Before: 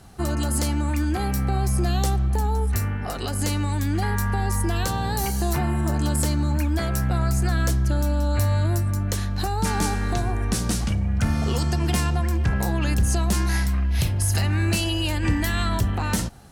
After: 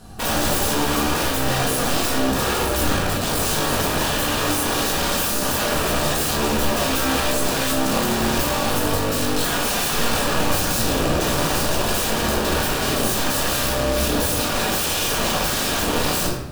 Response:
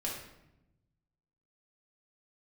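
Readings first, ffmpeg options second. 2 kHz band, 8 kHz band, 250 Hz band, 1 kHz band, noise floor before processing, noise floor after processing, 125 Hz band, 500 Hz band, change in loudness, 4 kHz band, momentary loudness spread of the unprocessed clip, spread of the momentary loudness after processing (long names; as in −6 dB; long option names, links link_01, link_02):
+7.5 dB, +8.0 dB, +2.0 dB, +6.5 dB, −26 dBFS, −22 dBFS, −6.5 dB, +9.0 dB, +3.5 dB, +10.0 dB, 3 LU, 1 LU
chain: -filter_complex "[0:a]acrusher=bits=8:mode=log:mix=0:aa=0.000001,aeval=exprs='(mod(15*val(0)+1,2)-1)/15':channel_layout=same,equalizer=frequency=2100:width_type=o:width=0.21:gain=-9.5[link_01];[1:a]atrim=start_sample=2205[link_02];[link_01][link_02]afir=irnorm=-1:irlink=0,volume=4.5dB"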